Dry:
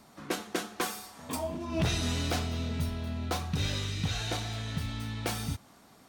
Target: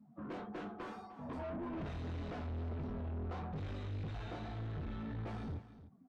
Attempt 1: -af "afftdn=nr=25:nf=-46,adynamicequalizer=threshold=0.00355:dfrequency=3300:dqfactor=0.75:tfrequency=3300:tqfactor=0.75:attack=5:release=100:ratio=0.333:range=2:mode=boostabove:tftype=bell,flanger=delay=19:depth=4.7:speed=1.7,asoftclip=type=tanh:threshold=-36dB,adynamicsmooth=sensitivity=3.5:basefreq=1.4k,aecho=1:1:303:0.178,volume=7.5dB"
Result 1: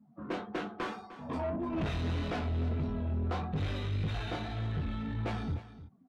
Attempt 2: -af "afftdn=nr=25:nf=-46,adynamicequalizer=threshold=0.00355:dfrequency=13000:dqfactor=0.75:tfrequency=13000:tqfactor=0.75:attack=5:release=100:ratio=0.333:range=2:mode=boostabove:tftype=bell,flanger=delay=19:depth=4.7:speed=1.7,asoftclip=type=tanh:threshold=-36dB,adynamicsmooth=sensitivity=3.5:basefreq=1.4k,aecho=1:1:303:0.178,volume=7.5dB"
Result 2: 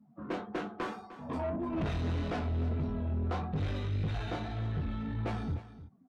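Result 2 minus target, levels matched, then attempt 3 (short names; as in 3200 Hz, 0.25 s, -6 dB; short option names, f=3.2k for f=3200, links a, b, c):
soft clip: distortion -5 dB
-af "afftdn=nr=25:nf=-46,adynamicequalizer=threshold=0.00355:dfrequency=13000:dqfactor=0.75:tfrequency=13000:tqfactor=0.75:attack=5:release=100:ratio=0.333:range=2:mode=boostabove:tftype=bell,flanger=delay=19:depth=4.7:speed=1.7,asoftclip=type=tanh:threshold=-46.5dB,adynamicsmooth=sensitivity=3.5:basefreq=1.4k,aecho=1:1:303:0.178,volume=7.5dB"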